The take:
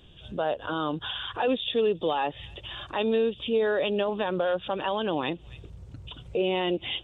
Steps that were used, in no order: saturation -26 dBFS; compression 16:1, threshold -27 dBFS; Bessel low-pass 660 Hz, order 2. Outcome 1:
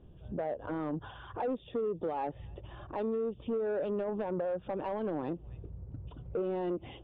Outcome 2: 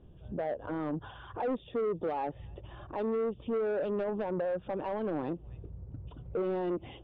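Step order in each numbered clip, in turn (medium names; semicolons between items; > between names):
Bessel low-pass > compression > saturation; Bessel low-pass > saturation > compression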